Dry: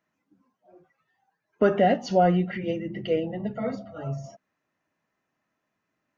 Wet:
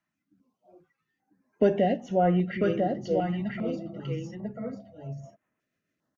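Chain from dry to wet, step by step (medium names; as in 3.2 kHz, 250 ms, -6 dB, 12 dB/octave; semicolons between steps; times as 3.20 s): rotary cabinet horn 1.1 Hz, later 6.7 Hz, at 3.41 s; on a send: delay 995 ms -4 dB; on the sum: step-sequenced notch 2.5 Hz 470–4600 Hz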